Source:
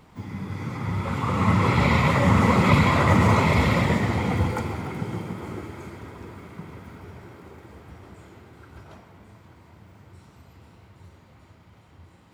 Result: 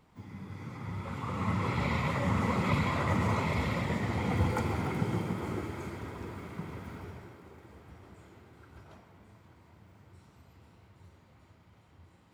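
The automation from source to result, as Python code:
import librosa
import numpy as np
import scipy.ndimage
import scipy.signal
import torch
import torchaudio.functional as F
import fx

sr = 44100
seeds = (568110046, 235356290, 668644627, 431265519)

y = fx.gain(x, sr, db=fx.line((3.84, -11.0), (4.81, -1.0), (7.0, -1.0), (7.4, -7.5)))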